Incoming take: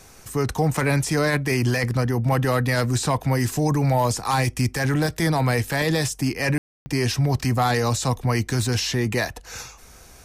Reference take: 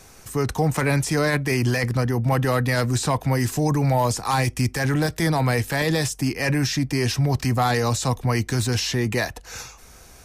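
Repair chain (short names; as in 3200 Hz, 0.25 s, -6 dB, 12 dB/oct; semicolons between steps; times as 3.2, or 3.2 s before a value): room tone fill 6.58–6.86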